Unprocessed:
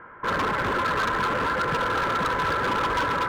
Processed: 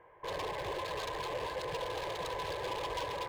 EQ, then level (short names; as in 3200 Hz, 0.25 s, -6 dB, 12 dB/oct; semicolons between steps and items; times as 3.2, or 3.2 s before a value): low shelf 300 Hz -4.5 dB; fixed phaser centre 570 Hz, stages 4; notch 5800 Hz, Q 25; -6.0 dB